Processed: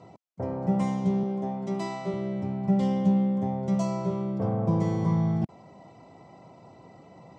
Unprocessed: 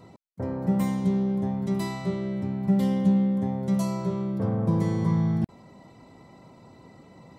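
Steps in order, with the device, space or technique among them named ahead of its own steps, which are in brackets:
0:01.23–0:02.14: high-pass filter 200 Hz 12 dB per octave
car door speaker (loudspeaker in its box 90–7,100 Hz, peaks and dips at 240 Hz −5 dB, 710 Hz +7 dB, 1,700 Hz −6 dB, 4,000 Hz −6 dB)

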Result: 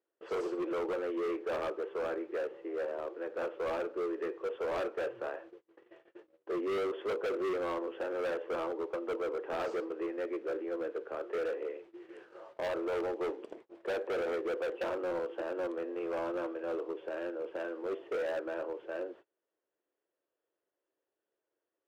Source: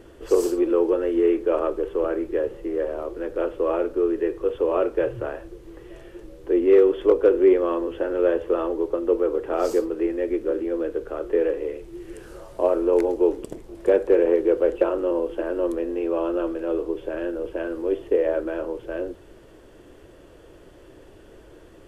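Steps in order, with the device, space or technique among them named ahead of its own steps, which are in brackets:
walkie-talkie (band-pass filter 470–2,800 Hz; hard clipping −25.5 dBFS, distortion −6 dB; noise gate −46 dBFS, range −30 dB)
level −5.5 dB

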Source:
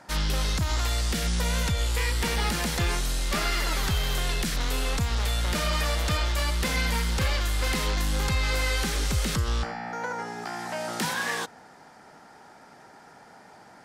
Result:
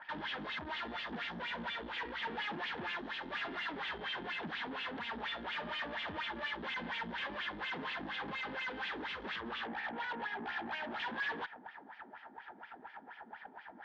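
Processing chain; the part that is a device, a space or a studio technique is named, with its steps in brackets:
wah-wah guitar rig (LFO wah 4.2 Hz 260–2,800 Hz, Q 3.6; tube saturation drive 48 dB, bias 0.55; loudspeaker in its box 83–4,000 Hz, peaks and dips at 120 Hz −8 dB, 220 Hz +5 dB, 520 Hz −3 dB, 900 Hz +7 dB, 1,700 Hz +9 dB, 3,300 Hz +7 dB)
level +6.5 dB

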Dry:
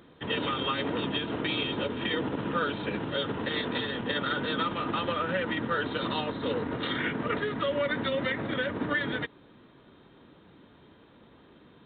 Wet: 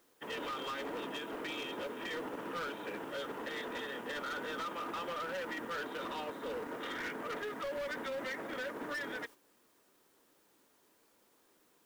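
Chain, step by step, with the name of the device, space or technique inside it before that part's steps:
aircraft radio (band-pass filter 370–2,500 Hz; hard clipping −31 dBFS, distortion −10 dB; white noise bed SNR 23 dB; noise gate −46 dBFS, range −8 dB)
level −5 dB

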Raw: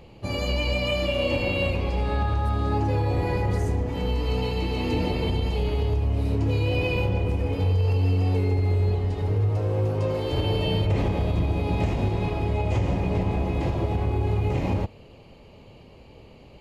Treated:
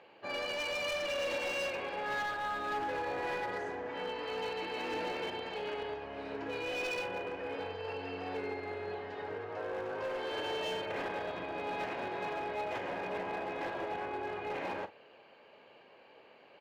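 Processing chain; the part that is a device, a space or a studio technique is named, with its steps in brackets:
megaphone (band-pass filter 550–3,100 Hz; parametric band 1,600 Hz +12 dB 0.29 octaves; hard clipping −29 dBFS, distortion −12 dB; double-tracking delay 43 ms −13.5 dB)
level −3.5 dB

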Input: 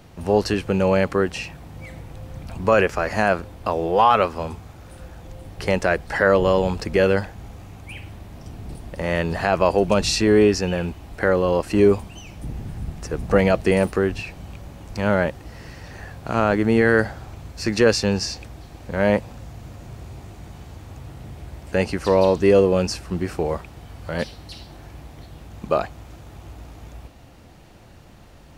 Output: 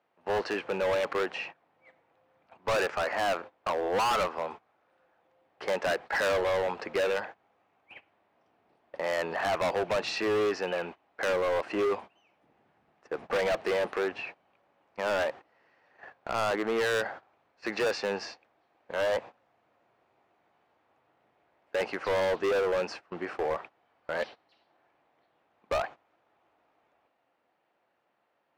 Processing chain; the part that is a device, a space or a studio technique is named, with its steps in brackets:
walkie-talkie (band-pass filter 560–2,200 Hz; hard clipping −24.5 dBFS, distortion −5 dB; noise gate −41 dBFS, range −19 dB)

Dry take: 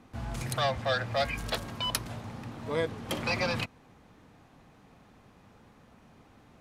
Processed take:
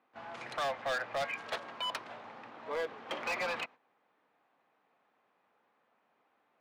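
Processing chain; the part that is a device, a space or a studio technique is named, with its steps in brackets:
walkie-talkie (band-pass filter 550–2,700 Hz; hard clipping −30 dBFS, distortion −11 dB; noise gate −50 dBFS, range −11 dB)

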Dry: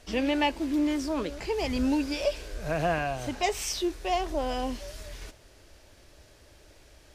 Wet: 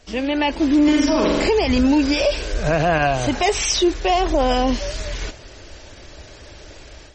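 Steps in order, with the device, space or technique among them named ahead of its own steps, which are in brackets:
0:00.84–0:01.49: flutter between parallel walls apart 7.3 metres, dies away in 1 s
low-bitrate web radio (automatic gain control gain up to 11.5 dB; brickwall limiter −12 dBFS, peak gain reduction 7.5 dB; level +3.5 dB; MP3 32 kbit/s 44,100 Hz)

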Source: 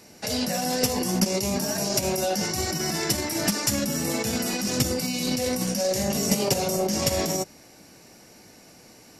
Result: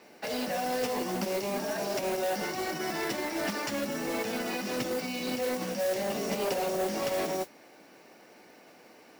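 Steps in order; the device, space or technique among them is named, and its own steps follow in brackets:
carbon microphone (band-pass filter 320–2,800 Hz; soft clipping −24.5 dBFS, distortion −15 dB; noise that follows the level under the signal 13 dB)

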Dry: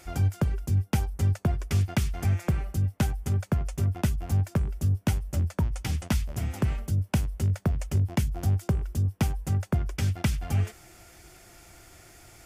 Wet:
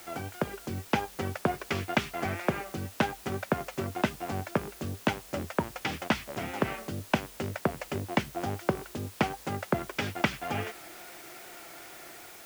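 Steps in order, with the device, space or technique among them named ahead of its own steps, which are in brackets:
dictaphone (band-pass filter 340–3,100 Hz; automatic gain control gain up to 5 dB; tape wow and flutter; white noise bed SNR 17 dB)
level +2.5 dB

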